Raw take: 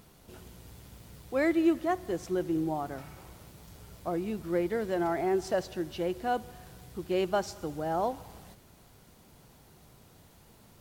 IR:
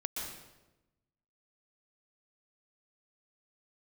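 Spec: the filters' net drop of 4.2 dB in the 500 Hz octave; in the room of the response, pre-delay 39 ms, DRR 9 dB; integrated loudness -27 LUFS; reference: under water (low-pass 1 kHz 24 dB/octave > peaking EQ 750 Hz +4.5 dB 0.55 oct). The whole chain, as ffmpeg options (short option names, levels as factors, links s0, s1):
-filter_complex "[0:a]equalizer=f=500:t=o:g=-8,asplit=2[s0][s1];[1:a]atrim=start_sample=2205,adelay=39[s2];[s1][s2]afir=irnorm=-1:irlink=0,volume=0.282[s3];[s0][s3]amix=inputs=2:normalize=0,lowpass=f=1000:w=0.5412,lowpass=f=1000:w=1.3066,equalizer=f=750:t=o:w=0.55:g=4.5,volume=2.24"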